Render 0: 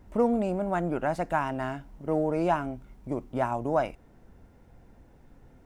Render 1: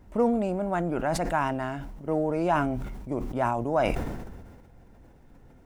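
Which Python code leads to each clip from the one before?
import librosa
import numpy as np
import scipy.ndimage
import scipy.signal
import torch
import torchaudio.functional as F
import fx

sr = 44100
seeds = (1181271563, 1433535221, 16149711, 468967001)

y = fx.sustainer(x, sr, db_per_s=36.0)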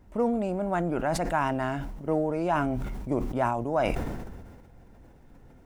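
y = fx.rider(x, sr, range_db=4, speed_s=0.5)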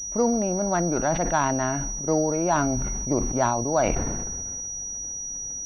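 y = fx.pwm(x, sr, carrier_hz=5800.0)
y = y * librosa.db_to_amplitude(3.5)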